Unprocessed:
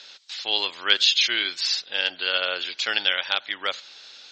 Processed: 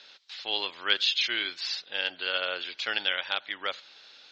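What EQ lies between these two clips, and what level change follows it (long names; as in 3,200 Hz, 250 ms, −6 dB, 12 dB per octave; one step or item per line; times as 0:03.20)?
high-frequency loss of the air 130 metres
−3.5 dB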